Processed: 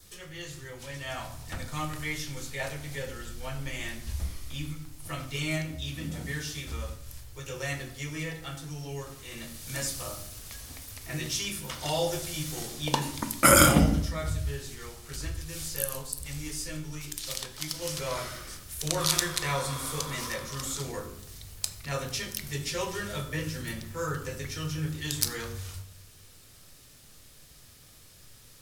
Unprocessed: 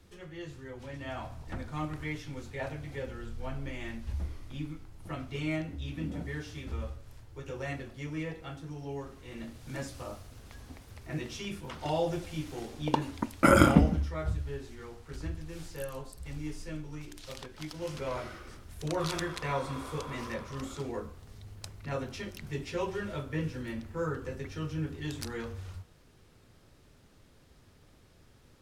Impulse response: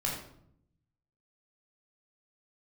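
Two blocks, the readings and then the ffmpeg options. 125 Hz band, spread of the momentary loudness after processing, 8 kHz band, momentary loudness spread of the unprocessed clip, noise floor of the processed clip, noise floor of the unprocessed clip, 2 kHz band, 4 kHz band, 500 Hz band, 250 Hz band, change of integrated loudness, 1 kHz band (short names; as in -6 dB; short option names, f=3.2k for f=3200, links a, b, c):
+2.0 dB, 12 LU, +17.0 dB, 13 LU, -54 dBFS, -60 dBFS, +5.0 dB, +11.0 dB, +1.0 dB, -0.5 dB, +4.0 dB, +2.5 dB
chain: -filter_complex "[0:a]crystalizer=i=8:c=0,adynamicequalizer=threshold=0.00282:dfrequency=2600:dqfactor=4.1:tfrequency=2600:tqfactor=4.1:attack=5:release=100:ratio=0.375:range=2:mode=cutabove:tftype=bell,asplit=2[a][b];[1:a]atrim=start_sample=2205,lowshelf=f=140:g=5[c];[b][c]afir=irnorm=-1:irlink=0,volume=-10dB[d];[a][d]amix=inputs=2:normalize=0,volume=-4.5dB"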